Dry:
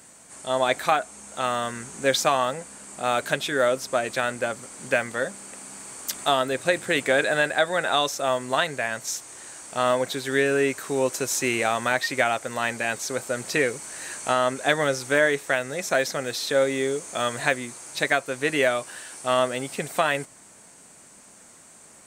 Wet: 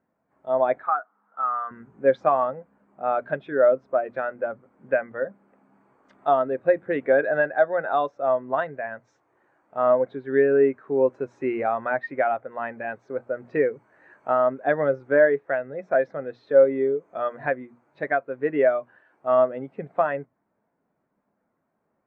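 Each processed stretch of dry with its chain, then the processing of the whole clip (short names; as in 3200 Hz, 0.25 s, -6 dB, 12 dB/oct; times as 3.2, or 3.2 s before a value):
0.83–1.71 speaker cabinet 340–4000 Hz, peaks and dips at 370 Hz -7 dB, 580 Hz -9 dB, 1300 Hz +8 dB, 2400 Hz -7 dB, 3900 Hz -5 dB + compressor 1.5:1, threshold -24 dBFS
whole clip: LPF 1600 Hz 12 dB/oct; notches 60/120/180/240 Hz; spectral expander 1.5:1; gain +1 dB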